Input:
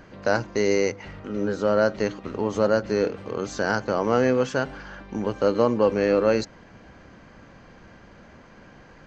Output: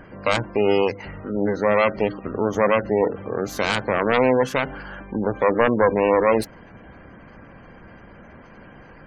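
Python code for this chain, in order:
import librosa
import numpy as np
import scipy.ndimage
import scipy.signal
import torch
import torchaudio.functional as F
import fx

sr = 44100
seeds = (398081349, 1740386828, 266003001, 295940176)

y = fx.self_delay(x, sr, depth_ms=0.5)
y = fx.spec_gate(y, sr, threshold_db=-25, keep='strong')
y = F.gain(torch.from_numpy(y), 4.0).numpy()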